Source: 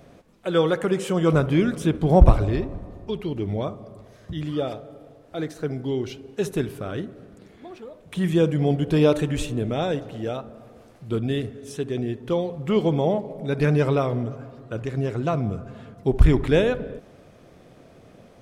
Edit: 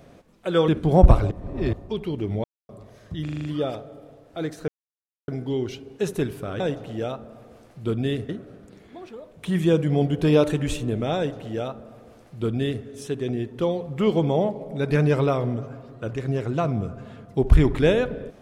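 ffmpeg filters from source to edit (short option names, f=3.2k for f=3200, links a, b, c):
-filter_complex "[0:a]asplit=14[a][b][c][d][e][f][g][h][i][j][k][l][m][n];[a]atrim=end=0.682[o];[b]atrim=start=1.858:end=2.492[p];[c]atrim=start=2.488:end=2.912,asetpts=PTS-STARTPTS,areverse[q];[d]atrim=start=2.908:end=3.62,asetpts=PTS-STARTPTS,afade=t=out:st=0.708:d=0.004:c=hsin[r];[e]atrim=start=3.62:end=3.87,asetpts=PTS-STARTPTS,volume=0[s];[f]atrim=start=3.87:end=4.462,asetpts=PTS-STARTPTS,afade=t=in:d=0.004:c=hsin[t];[g]atrim=start=4.418:end=4.462[u];[h]atrim=start=4.418:end=4.462[v];[i]atrim=start=4.418:end=4.462[w];[j]atrim=start=4.418:end=4.462[x];[k]atrim=start=4.418:end=5.66,asetpts=PTS-STARTPTS,afade=t=out:st=1.238:d=0.004:c=hsin,apad=pad_dur=0.6[y];[l]atrim=start=5.66:end=6.982,asetpts=PTS-STARTPTS,afade=t=in:d=0.004:c=hsin[z];[m]atrim=start=9.848:end=11.542[aa];[n]atrim=start=6.978[ab];[o][p]acrossfade=d=0.004:c1=hsin:c2=hsin[ac];[ac][q]acrossfade=d=0.004:c1=hsin:c2=hsin[ad];[r][s][t]concat=n=3:v=0:a=1[ae];[ad][ae]acrossfade=d=0.004:c1=hsin:c2=hsin[af];[af][u]acrossfade=d=0.004:c1=hsin:c2=hsin[ag];[ag][v]acrossfade=d=0.004:c1=hsin:c2=hsin[ah];[ah][w]acrossfade=d=0.004:c1=hsin:c2=hsin[ai];[ai][x]acrossfade=d=0.004:c1=hsin:c2=hsin[aj];[y][z]concat=n=2:v=0:a=1[ak];[aj][ak]acrossfade=d=0.004:c1=hsin:c2=hsin[al];[al][aa]acrossfade=d=0.004:c1=hsin:c2=hsin[am];[am][ab]acrossfade=d=0.004:c1=hsin:c2=hsin"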